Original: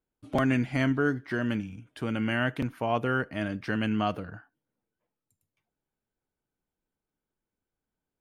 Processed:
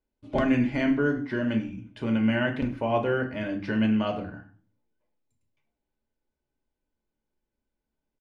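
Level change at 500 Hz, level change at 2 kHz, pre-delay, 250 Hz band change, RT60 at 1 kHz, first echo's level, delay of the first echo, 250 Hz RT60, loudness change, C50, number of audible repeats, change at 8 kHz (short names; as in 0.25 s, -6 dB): +3.5 dB, -0.5 dB, 3 ms, +4.0 dB, 0.40 s, -17.5 dB, 0.102 s, 0.60 s, +2.5 dB, 11.5 dB, 1, n/a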